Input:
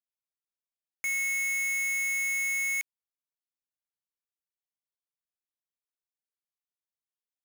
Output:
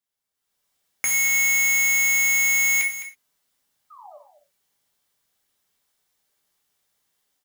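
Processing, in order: notch 2500 Hz, Q 13; limiter -34.5 dBFS, peak gain reduction 8 dB; AGC gain up to 13.5 dB; painted sound fall, 3.9–4.18, 550–1300 Hz -53 dBFS; echo 0.21 s -12 dB; non-linear reverb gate 0.14 s falling, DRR 1 dB; gain +6 dB

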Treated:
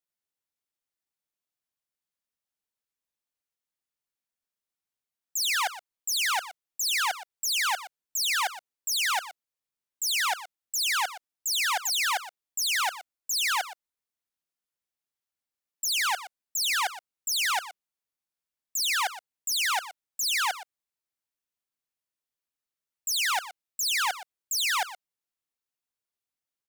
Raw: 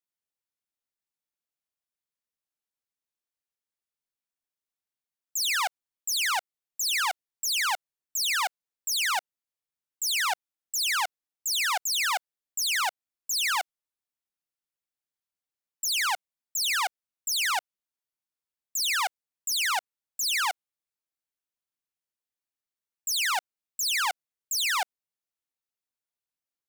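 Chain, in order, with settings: echo 0.12 s -14.5 dB

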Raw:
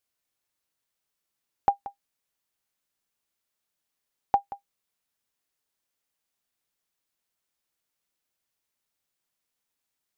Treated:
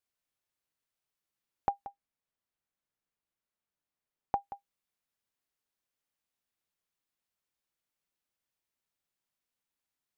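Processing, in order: tone controls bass +2 dB, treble -3 dB; compressor, threshold -20 dBFS, peak gain reduction 4 dB; 1.86–4.36 high shelf 2500 Hz -8 dB; gain -5 dB

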